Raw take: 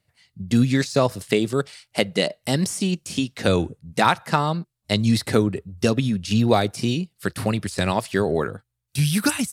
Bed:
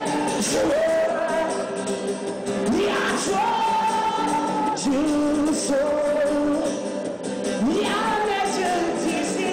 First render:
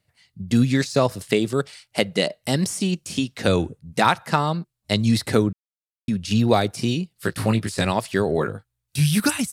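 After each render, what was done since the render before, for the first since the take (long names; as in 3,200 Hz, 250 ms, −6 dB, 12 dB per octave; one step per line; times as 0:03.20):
0:05.53–0:06.08: silence
0:07.15–0:07.85: double-tracking delay 18 ms −4.5 dB
0:08.36–0:09.20: double-tracking delay 19 ms −7 dB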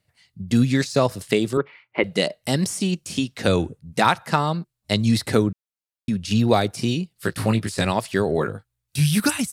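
0:01.57–0:02.04: loudspeaker in its box 150–2,400 Hz, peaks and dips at 200 Hz −7 dB, 350 Hz +9 dB, 690 Hz −7 dB, 1,000 Hz +8 dB, 1,600 Hz −4 dB, 2,200 Hz +6 dB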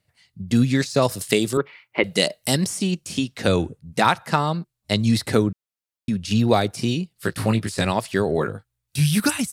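0:01.02–0:02.57: high-shelf EQ 4,500 Hz +11 dB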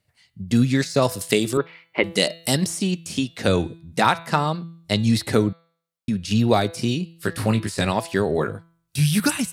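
hum removal 166.6 Hz, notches 27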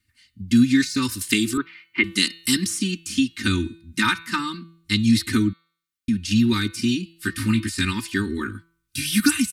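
Chebyshev band-stop filter 270–1,500 Hz, order 2
comb filter 3.3 ms, depth 98%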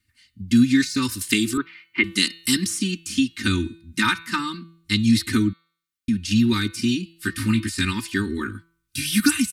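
no processing that can be heard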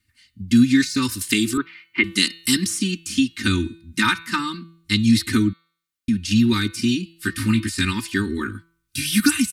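level +1.5 dB
brickwall limiter −3 dBFS, peak gain reduction 2 dB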